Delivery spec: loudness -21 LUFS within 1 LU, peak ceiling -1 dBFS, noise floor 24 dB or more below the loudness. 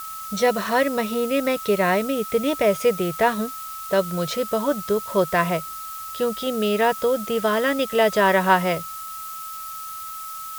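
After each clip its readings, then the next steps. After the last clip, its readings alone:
steady tone 1.3 kHz; tone level -33 dBFS; noise floor -34 dBFS; noise floor target -47 dBFS; loudness -22.5 LUFS; peak level -3.5 dBFS; loudness target -21.0 LUFS
-> band-stop 1.3 kHz, Q 30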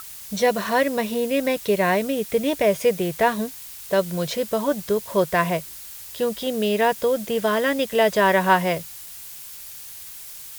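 steady tone not found; noise floor -39 dBFS; noise floor target -46 dBFS
-> noise reduction 7 dB, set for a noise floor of -39 dBFS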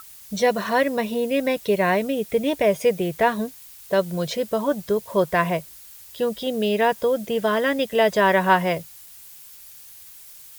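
noise floor -45 dBFS; noise floor target -46 dBFS
-> noise reduction 6 dB, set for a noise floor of -45 dBFS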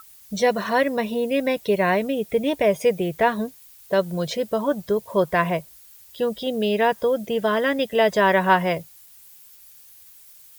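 noise floor -49 dBFS; loudness -22.0 LUFS; peak level -3.5 dBFS; loudness target -21.0 LUFS
-> trim +1 dB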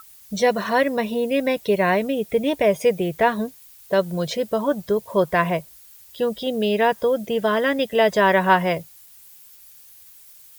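loudness -21.0 LUFS; peak level -2.5 dBFS; noise floor -48 dBFS

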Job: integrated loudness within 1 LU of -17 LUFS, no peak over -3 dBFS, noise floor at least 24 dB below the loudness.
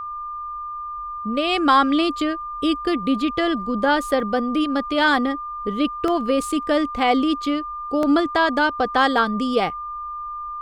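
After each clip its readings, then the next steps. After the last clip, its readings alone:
dropouts 3; longest dropout 1.5 ms; steady tone 1.2 kHz; tone level -28 dBFS; loudness -21.5 LUFS; peak level -5.0 dBFS; loudness target -17.0 LUFS
-> interpolate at 4.20/6.08/8.03 s, 1.5 ms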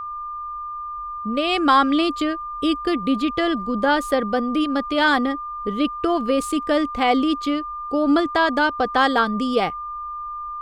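dropouts 0; steady tone 1.2 kHz; tone level -28 dBFS
-> band-stop 1.2 kHz, Q 30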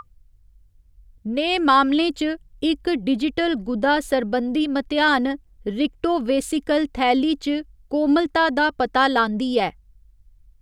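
steady tone not found; loudness -21.0 LUFS; peak level -5.5 dBFS; loudness target -17.0 LUFS
-> trim +4 dB; peak limiter -3 dBFS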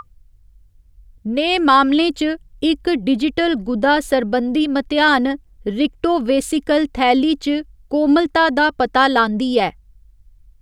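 loudness -17.0 LUFS; peak level -3.0 dBFS; noise floor -51 dBFS

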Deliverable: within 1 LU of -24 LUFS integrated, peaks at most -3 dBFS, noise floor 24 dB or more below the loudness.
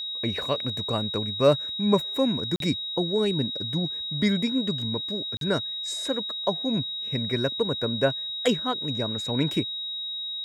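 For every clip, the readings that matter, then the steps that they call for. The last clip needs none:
dropouts 2; longest dropout 42 ms; steady tone 3.8 kHz; tone level -30 dBFS; loudness -26.0 LUFS; peak level -8.0 dBFS; loudness target -24.0 LUFS
-> interpolate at 2.56/5.37 s, 42 ms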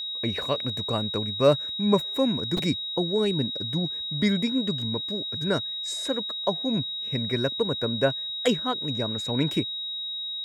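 dropouts 0; steady tone 3.8 kHz; tone level -30 dBFS
-> band-stop 3.8 kHz, Q 30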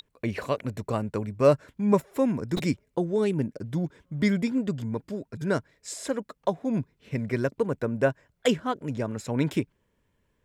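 steady tone not found; loudness -28.0 LUFS; peak level -8.0 dBFS; loudness target -24.0 LUFS
-> trim +4 dB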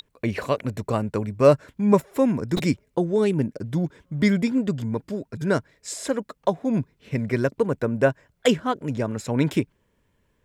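loudness -24.0 LUFS; peak level -4.0 dBFS; noise floor -69 dBFS

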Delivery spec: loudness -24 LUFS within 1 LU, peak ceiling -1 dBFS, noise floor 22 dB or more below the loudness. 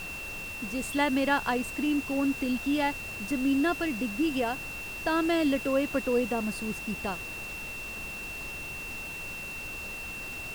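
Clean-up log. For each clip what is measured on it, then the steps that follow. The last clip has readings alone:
steady tone 2.7 kHz; tone level -37 dBFS; noise floor -39 dBFS; noise floor target -52 dBFS; loudness -30.0 LUFS; peak level -12.5 dBFS; loudness target -24.0 LUFS
-> band-stop 2.7 kHz, Q 30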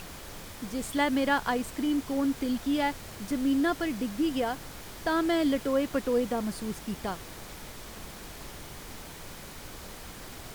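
steady tone not found; noise floor -44 dBFS; noise floor target -52 dBFS
-> noise print and reduce 8 dB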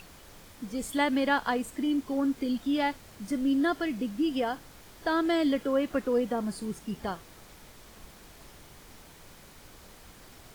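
noise floor -52 dBFS; loudness -29.5 LUFS; peak level -13.5 dBFS; loudness target -24.0 LUFS
-> trim +5.5 dB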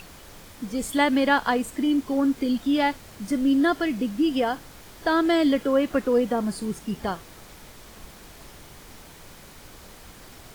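loudness -24.0 LUFS; peak level -8.0 dBFS; noise floor -47 dBFS

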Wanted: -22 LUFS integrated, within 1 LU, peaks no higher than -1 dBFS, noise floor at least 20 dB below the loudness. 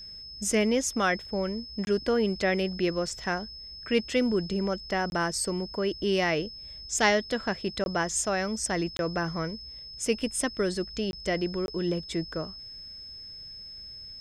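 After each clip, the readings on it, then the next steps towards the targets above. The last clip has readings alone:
dropouts 6; longest dropout 21 ms; steady tone 5.2 kHz; tone level -41 dBFS; loudness -28.5 LUFS; peak level -8.5 dBFS; loudness target -22.0 LUFS
-> interpolate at 1.85/5.10/7.84/8.97/11.11/11.66 s, 21 ms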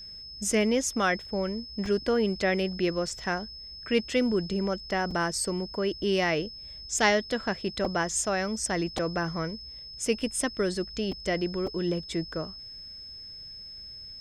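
dropouts 0; steady tone 5.2 kHz; tone level -41 dBFS
-> band-stop 5.2 kHz, Q 30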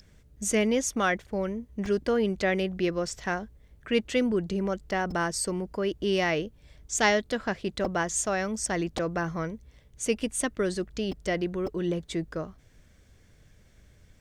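steady tone not found; loudness -29.0 LUFS; peak level -8.5 dBFS; loudness target -22.0 LUFS
-> trim +7 dB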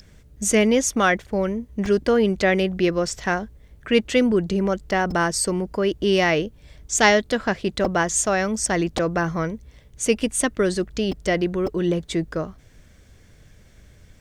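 loudness -22.0 LUFS; peak level -1.5 dBFS; noise floor -51 dBFS

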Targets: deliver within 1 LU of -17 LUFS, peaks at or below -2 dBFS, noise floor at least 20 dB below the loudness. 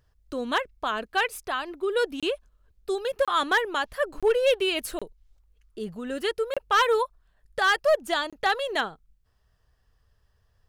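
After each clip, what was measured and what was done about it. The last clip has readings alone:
clipped samples 0.5%; clipping level -15.0 dBFS; dropouts 6; longest dropout 26 ms; loudness -26.0 LUFS; peak level -15.0 dBFS; loudness target -17.0 LUFS
-> clip repair -15 dBFS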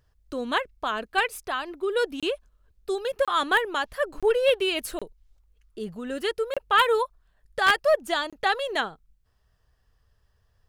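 clipped samples 0.0%; dropouts 6; longest dropout 26 ms
-> interpolate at 2.20/3.25/4.20/4.99/6.54/8.30 s, 26 ms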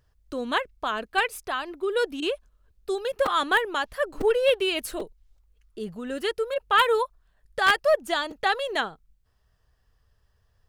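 dropouts 0; loudness -25.5 LUFS; peak level -6.0 dBFS; loudness target -17.0 LUFS
-> trim +8.5 dB; peak limiter -2 dBFS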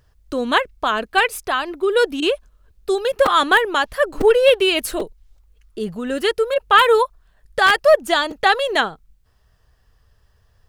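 loudness -17.5 LUFS; peak level -2.0 dBFS; noise floor -60 dBFS

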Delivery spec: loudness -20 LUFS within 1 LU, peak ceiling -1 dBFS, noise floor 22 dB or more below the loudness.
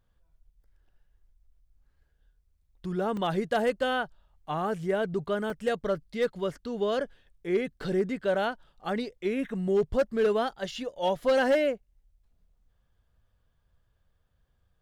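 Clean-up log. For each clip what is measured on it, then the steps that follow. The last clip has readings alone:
clipped samples 0.3%; clipping level -18.5 dBFS; dropouts 2; longest dropout 2.2 ms; loudness -29.0 LUFS; peak level -18.5 dBFS; loudness target -20.0 LUFS
-> clip repair -18.5 dBFS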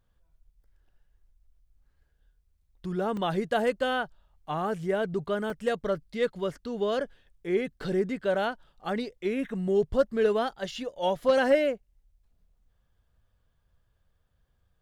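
clipped samples 0.0%; dropouts 2; longest dropout 2.2 ms
-> interpolate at 3.17/5.50 s, 2.2 ms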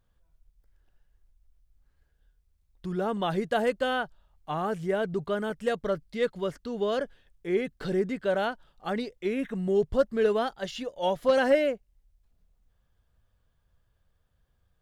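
dropouts 0; loudness -29.0 LUFS; peak level -11.5 dBFS; loudness target -20.0 LUFS
-> trim +9 dB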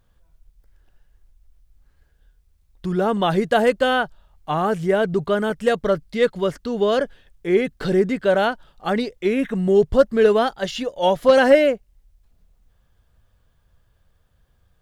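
loudness -20.0 LUFS; peak level -2.5 dBFS; noise floor -62 dBFS

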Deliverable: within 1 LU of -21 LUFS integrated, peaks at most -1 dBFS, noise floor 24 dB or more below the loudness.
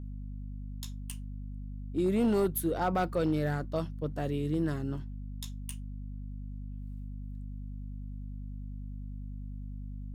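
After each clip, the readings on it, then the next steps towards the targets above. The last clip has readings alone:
clipped samples 0.5%; clipping level -21.5 dBFS; hum 50 Hz; highest harmonic 250 Hz; hum level -37 dBFS; loudness -35.0 LUFS; peak level -21.5 dBFS; loudness target -21.0 LUFS
-> clip repair -21.5 dBFS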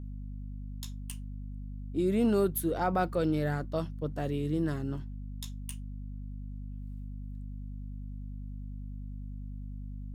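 clipped samples 0.0%; hum 50 Hz; highest harmonic 250 Hz; hum level -37 dBFS
-> hum notches 50/100/150/200/250 Hz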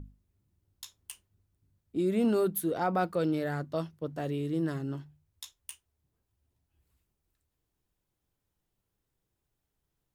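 hum not found; loudness -31.0 LUFS; peak level -16.5 dBFS; loudness target -21.0 LUFS
-> trim +10 dB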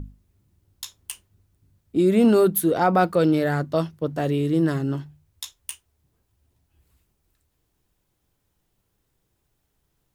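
loudness -21.0 LUFS; peak level -6.5 dBFS; noise floor -74 dBFS

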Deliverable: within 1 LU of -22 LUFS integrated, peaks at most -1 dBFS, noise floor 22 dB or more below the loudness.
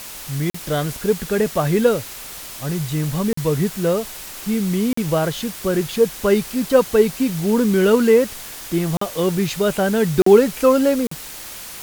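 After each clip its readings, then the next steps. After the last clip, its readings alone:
dropouts 6; longest dropout 44 ms; noise floor -35 dBFS; noise floor target -41 dBFS; loudness -19.0 LUFS; peak level -1.0 dBFS; loudness target -22.0 LUFS
-> interpolate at 0.50/3.33/4.93/8.97/10.22/11.07 s, 44 ms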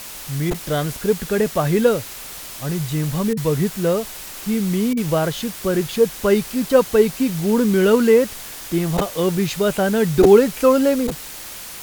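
dropouts 0; noise floor -35 dBFS; noise floor target -41 dBFS
-> noise reduction 6 dB, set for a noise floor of -35 dBFS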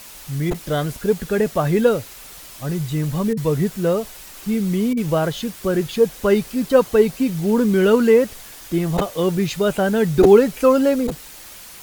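noise floor -40 dBFS; noise floor target -41 dBFS
-> noise reduction 6 dB, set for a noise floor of -40 dBFS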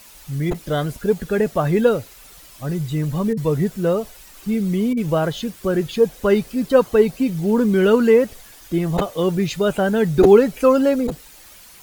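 noise floor -45 dBFS; loudness -19.0 LUFS; peak level -1.5 dBFS; loudness target -22.0 LUFS
-> trim -3 dB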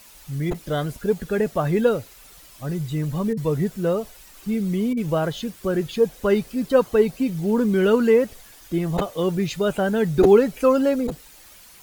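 loudness -22.0 LUFS; peak level -4.5 dBFS; noise floor -48 dBFS

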